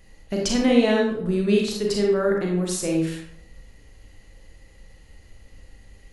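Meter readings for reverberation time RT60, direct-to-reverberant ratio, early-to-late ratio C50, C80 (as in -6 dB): 0.70 s, -1.0 dB, 2.0 dB, 6.0 dB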